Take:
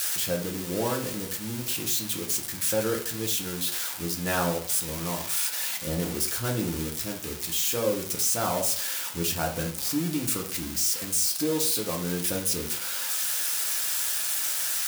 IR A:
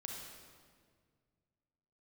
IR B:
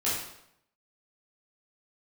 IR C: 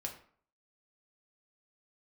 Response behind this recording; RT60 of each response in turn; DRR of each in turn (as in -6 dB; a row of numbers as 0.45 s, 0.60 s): C; 1.9 s, 0.75 s, 0.50 s; -0.5 dB, -9.5 dB, 1.0 dB